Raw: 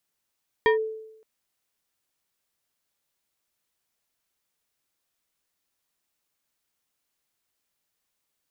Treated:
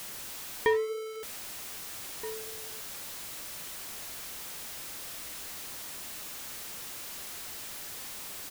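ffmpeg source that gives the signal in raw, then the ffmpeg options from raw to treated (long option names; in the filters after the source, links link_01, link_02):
-f lavfi -i "aevalsrc='0.2*pow(10,-3*t/0.84)*sin(2*PI*439*t+1.1*clip(1-t/0.12,0,1)*sin(2*PI*3.19*439*t))':duration=0.57:sample_rate=44100"
-filter_complex "[0:a]aeval=exprs='val(0)+0.5*0.0299*sgn(val(0))':channel_layout=same,flanger=delay=8.2:depth=5.8:regen=-85:speed=0.73:shape=triangular,asplit=2[link_01][link_02];[link_02]adelay=1574,volume=-13dB,highshelf=frequency=4000:gain=-35.4[link_03];[link_01][link_03]amix=inputs=2:normalize=0"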